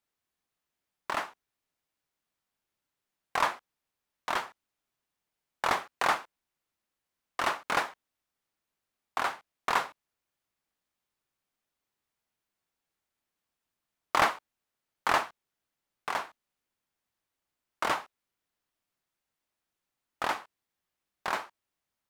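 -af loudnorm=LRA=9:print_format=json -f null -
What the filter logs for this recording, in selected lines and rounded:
"input_i" : "-32.0",
"input_tp" : "-8.7",
"input_lra" : "7.1",
"input_thresh" : "-43.0",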